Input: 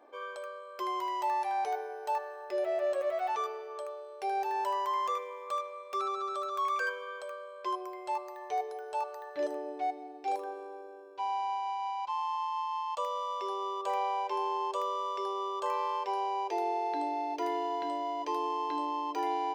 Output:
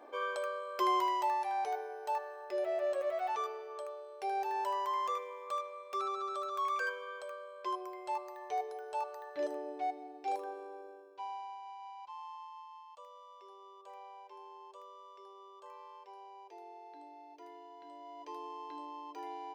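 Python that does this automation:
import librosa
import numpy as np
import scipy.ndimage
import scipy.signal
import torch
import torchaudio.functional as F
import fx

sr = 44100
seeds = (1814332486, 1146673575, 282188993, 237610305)

y = fx.gain(x, sr, db=fx.line((0.95, 4.5), (1.38, -3.0), (10.89, -3.0), (11.56, -13.0), (12.27, -13.0), (12.98, -19.5), (17.75, -19.5), (18.3, -12.0)))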